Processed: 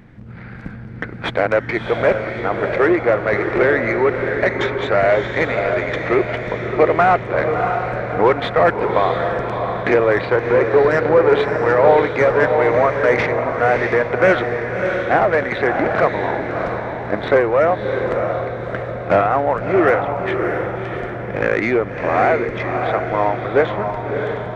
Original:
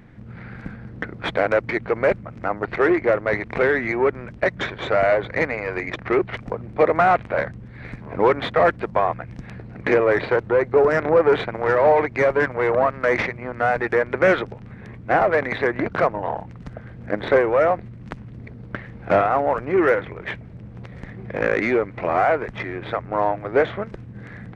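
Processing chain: diffused feedback echo 0.638 s, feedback 48%, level -5 dB; gain +2.5 dB

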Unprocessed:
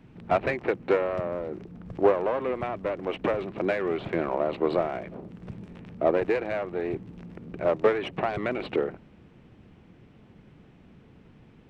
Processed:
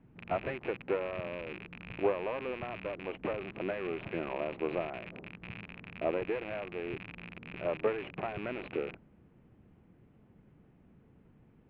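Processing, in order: rattling part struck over -42 dBFS, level -19 dBFS; air absorption 490 m; gain -7.5 dB

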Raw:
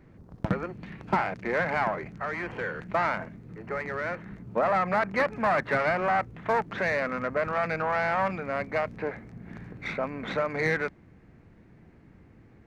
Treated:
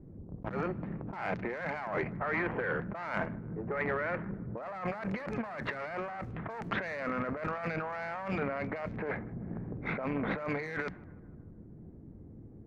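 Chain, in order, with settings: low-pass opened by the level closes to 370 Hz, open at -22.5 dBFS; notches 60/120/180/240 Hz; negative-ratio compressor -35 dBFS, ratio -1; narrowing echo 0.155 s, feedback 60%, band-pass 950 Hz, level -22 dB; core saturation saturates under 580 Hz

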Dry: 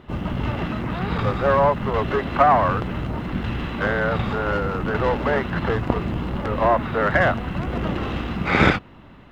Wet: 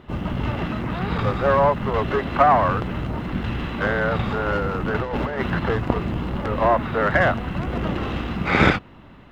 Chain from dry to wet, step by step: 5–5.56 negative-ratio compressor -23 dBFS, ratio -0.5

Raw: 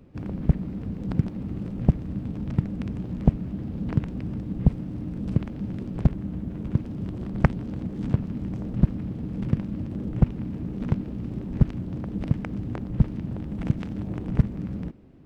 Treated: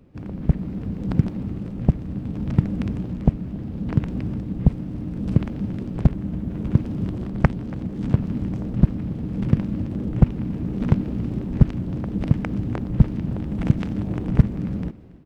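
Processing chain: AGC; echo 0.281 s -22 dB; gain -1 dB

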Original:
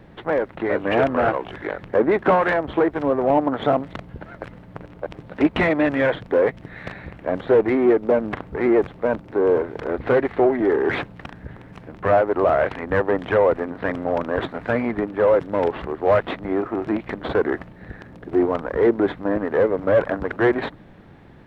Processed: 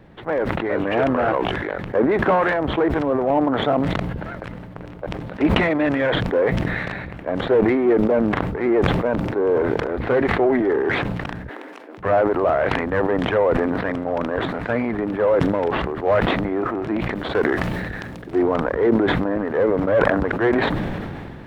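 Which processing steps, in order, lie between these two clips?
11.49–11.98 steep high-pass 270 Hz 48 dB/oct; 17.15–18.42 high shelf 2500 Hz +9.5 dB; sustainer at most 24 dB/s; gain -1.5 dB

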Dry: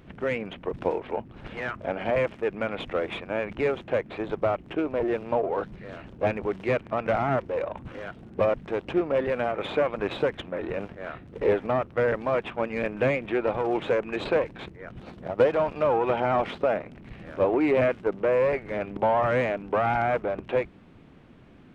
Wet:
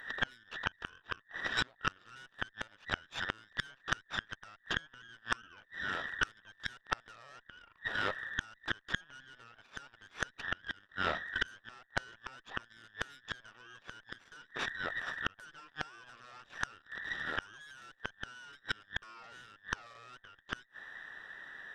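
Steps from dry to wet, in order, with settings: band inversion scrambler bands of 2000 Hz; added harmonics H 3 -20 dB, 6 -23 dB, 8 -15 dB, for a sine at -9.5 dBFS; low shelf 200 Hz -4.5 dB; limiter -17 dBFS, peak gain reduction 9 dB; flipped gate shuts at -21 dBFS, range -33 dB; gain +6 dB

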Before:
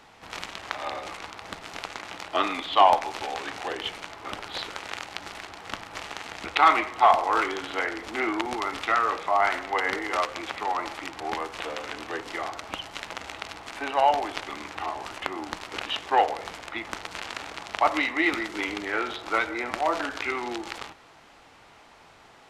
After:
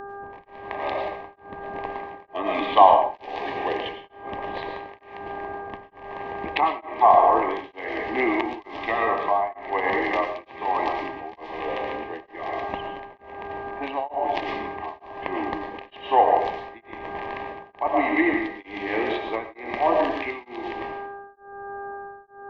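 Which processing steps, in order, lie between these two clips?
treble ducked by the level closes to 1400 Hz, closed at -20 dBFS; LPF 2900 Hz 6 dB/oct; low-pass opened by the level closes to 580 Hz, open at -23.5 dBFS; buzz 400 Hz, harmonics 4, -41 dBFS 0 dB/oct; Butterworth band-stop 1400 Hz, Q 2.4; reverb RT60 0.60 s, pre-delay 70 ms, DRR 3 dB; beating tremolo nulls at 1.1 Hz; gain +6 dB

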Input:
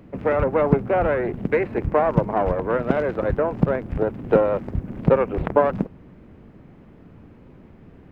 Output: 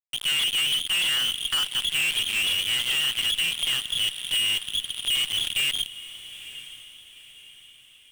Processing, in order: inverted band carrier 3400 Hz; fuzz box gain 32 dB, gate -30 dBFS; diffused feedback echo 0.921 s, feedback 43%, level -15 dB; gain -8.5 dB

